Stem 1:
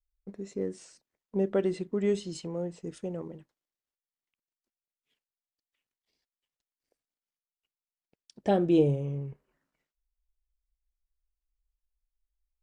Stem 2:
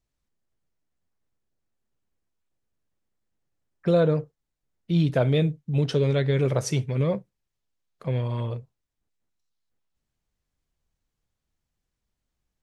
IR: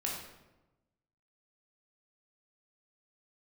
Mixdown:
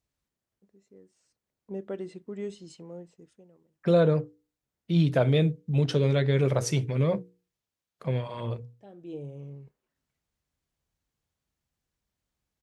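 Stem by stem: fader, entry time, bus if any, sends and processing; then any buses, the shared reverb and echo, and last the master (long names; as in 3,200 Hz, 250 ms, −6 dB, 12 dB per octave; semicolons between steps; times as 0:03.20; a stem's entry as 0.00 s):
0:01.16 −21.5 dB → 0:01.45 −8.5 dB, 0.35 s, no send, automatic ducking −22 dB, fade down 0.85 s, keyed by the second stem
−0.5 dB, 0.00 s, no send, mains-hum notches 60/120/180/240/300/360/420/480 Hz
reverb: not used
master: high-pass filter 53 Hz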